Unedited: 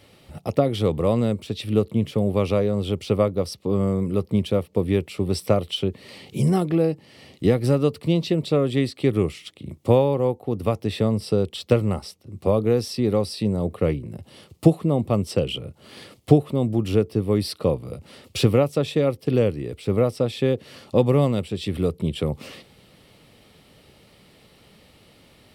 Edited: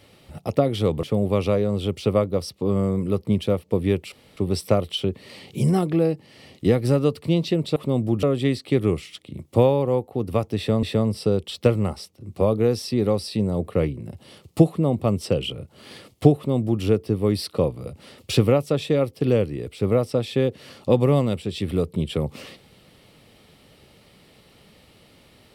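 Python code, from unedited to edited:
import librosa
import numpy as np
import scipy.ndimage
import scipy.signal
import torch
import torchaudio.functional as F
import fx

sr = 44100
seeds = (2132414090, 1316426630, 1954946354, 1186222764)

y = fx.edit(x, sr, fx.cut(start_s=1.03, length_s=1.04),
    fx.insert_room_tone(at_s=5.16, length_s=0.25),
    fx.repeat(start_s=10.89, length_s=0.26, count=2),
    fx.duplicate(start_s=16.42, length_s=0.47, to_s=8.55), tone=tone)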